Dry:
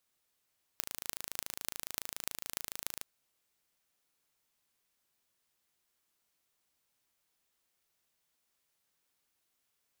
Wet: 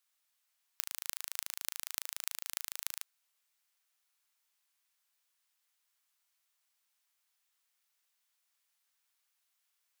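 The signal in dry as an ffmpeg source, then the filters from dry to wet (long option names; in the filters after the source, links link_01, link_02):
-f lavfi -i "aevalsrc='0.501*eq(mod(n,1627),0)*(0.5+0.5*eq(mod(n,13016),0))':duration=2.25:sample_rate=44100"
-af "highpass=970,aeval=exprs='0.473*(cos(1*acos(clip(val(0)/0.473,-1,1)))-cos(1*PI/2))+0.0422*(cos(2*acos(clip(val(0)/0.473,-1,1)))-cos(2*PI/2))+0.00841*(cos(6*acos(clip(val(0)/0.473,-1,1)))-cos(6*PI/2))':channel_layout=same"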